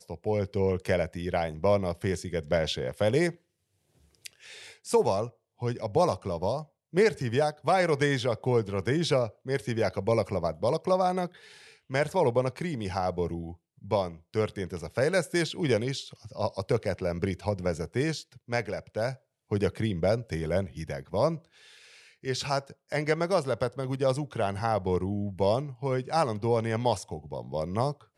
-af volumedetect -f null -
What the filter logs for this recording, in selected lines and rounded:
mean_volume: -29.0 dB
max_volume: -12.0 dB